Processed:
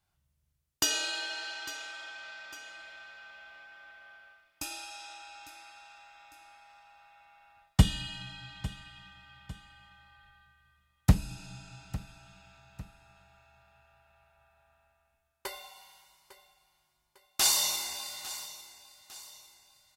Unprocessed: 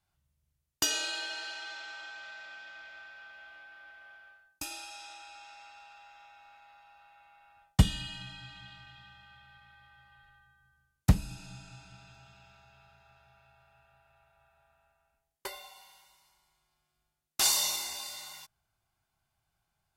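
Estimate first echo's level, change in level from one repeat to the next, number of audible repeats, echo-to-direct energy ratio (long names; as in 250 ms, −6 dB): −16.0 dB, −7.0 dB, 2, −15.5 dB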